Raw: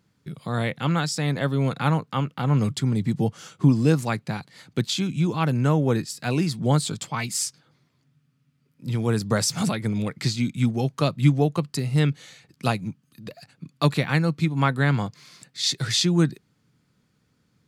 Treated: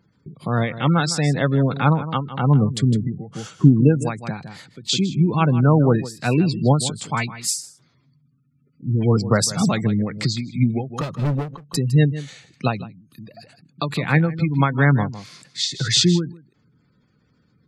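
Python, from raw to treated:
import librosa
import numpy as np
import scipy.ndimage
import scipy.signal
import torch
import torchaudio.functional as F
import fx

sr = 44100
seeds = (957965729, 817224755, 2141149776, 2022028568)

p1 = fx.dispersion(x, sr, late='highs', ms=136.0, hz=1500.0, at=(7.28, 9.17))
p2 = fx.spec_gate(p1, sr, threshold_db=-25, keep='strong')
p3 = fx.overload_stage(p2, sr, gain_db=24.0, at=(10.93, 11.75))
p4 = p3 + fx.echo_single(p3, sr, ms=158, db=-14.0, dry=0)
p5 = fx.end_taper(p4, sr, db_per_s=130.0)
y = p5 * 10.0 ** (5.5 / 20.0)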